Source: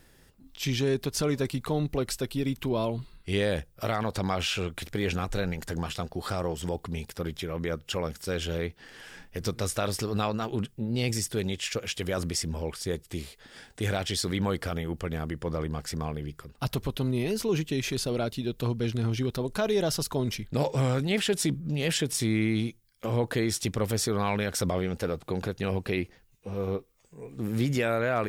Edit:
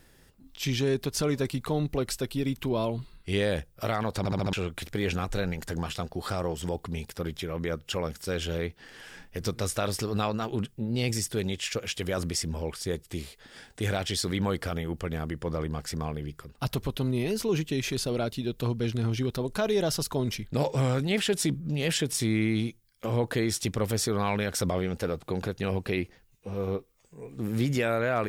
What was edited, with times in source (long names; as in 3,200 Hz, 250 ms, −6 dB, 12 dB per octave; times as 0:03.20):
0:04.18: stutter in place 0.07 s, 5 plays